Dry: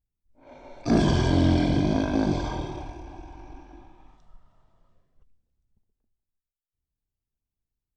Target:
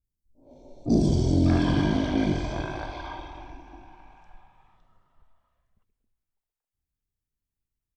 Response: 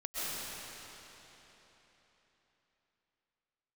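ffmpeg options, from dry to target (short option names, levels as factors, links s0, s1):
-filter_complex "[0:a]acrossover=split=640|4100[s0][s1][s2];[s2]adelay=40[s3];[s1]adelay=600[s4];[s0][s4][s3]amix=inputs=3:normalize=0"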